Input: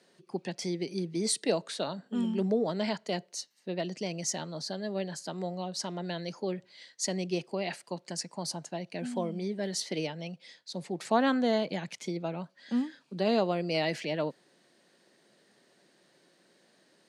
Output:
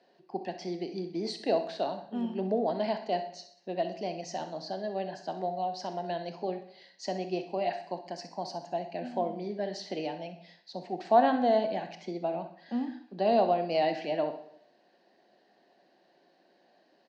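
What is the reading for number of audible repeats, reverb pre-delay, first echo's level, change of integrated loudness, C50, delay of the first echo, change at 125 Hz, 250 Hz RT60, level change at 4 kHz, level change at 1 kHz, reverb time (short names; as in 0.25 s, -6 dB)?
2, 26 ms, -13.5 dB, +1.0 dB, 9.5 dB, 64 ms, -6.0 dB, 0.70 s, -5.0 dB, +6.5 dB, 0.65 s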